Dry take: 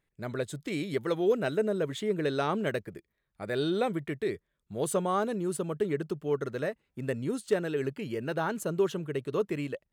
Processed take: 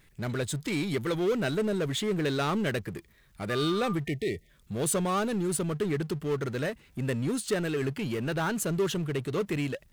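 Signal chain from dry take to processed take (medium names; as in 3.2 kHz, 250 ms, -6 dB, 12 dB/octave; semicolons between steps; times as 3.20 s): power-law waveshaper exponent 0.7; peaking EQ 600 Hz -7 dB 2.4 oct; 3.49–3.93 s: whistle 1.2 kHz -38 dBFS; 4.06–4.50 s: spectral selection erased 760–1800 Hz; trim +2.5 dB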